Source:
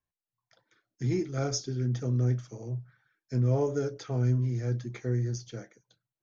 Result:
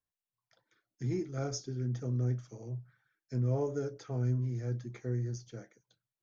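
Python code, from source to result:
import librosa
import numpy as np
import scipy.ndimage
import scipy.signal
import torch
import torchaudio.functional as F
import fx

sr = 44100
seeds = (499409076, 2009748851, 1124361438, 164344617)

y = fx.dynamic_eq(x, sr, hz=3400.0, q=0.87, threshold_db=-55.0, ratio=4.0, max_db=-5)
y = F.gain(torch.from_numpy(y), -5.0).numpy()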